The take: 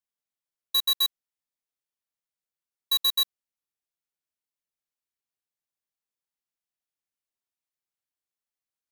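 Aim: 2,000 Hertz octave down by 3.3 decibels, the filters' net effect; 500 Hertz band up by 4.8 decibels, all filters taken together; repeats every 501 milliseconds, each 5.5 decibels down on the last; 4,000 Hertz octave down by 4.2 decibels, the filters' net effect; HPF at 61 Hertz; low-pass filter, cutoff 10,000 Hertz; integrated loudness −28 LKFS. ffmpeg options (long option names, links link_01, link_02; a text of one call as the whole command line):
ffmpeg -i in.wav -af "highpass=61,lowpass=10000,equalizer=frequency=500:width_type=o:gain=5.5,equalizer=frequency=2000:width_type=o:gain=-3.5,equalizer=frequency=4000:width_type=o:gain=-3.5,aecho=1:1:501|1002|1503|2004|2505|3006|3507:0.531|0.281|0.149|0.079|0.0419|0.0222|0.0118,volume=3.5dB" out.wav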